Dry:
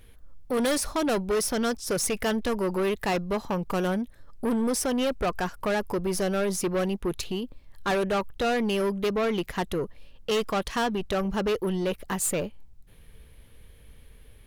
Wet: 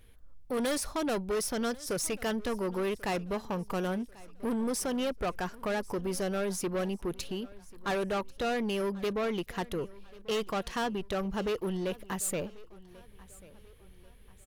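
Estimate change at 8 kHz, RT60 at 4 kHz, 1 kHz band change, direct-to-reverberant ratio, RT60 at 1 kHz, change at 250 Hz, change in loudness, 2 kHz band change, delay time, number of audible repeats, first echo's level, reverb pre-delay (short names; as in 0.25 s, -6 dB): -5.5 dB, none, -5.5 dB, none, none, -5.5 dB, -5.5 dB, -5.5 dB, 1.09 s, 2, -21.5 dB, none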